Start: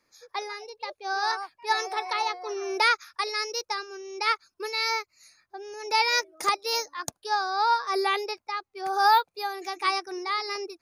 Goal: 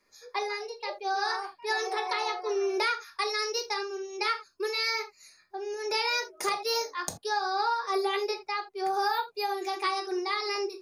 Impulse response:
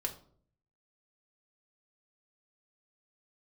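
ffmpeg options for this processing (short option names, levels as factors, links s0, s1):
-filter_complex "[1:a]atrim=start_sample=2205,atrim=end_sample=3969[s0];[0:a][s0]afir=irnorm=-1:irlink=0,acompressor=threshold=0.0562:ratio=6"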